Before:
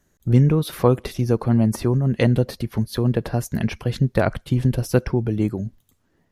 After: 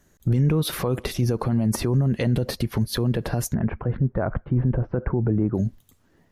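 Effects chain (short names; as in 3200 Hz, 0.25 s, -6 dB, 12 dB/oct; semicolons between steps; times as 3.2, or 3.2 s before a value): 3.54–5.55 LPF 1500 Hz 24 dB/oct; limiter -18.5 dBFS, peak gain reduction 15 dB; gain +4.5 dB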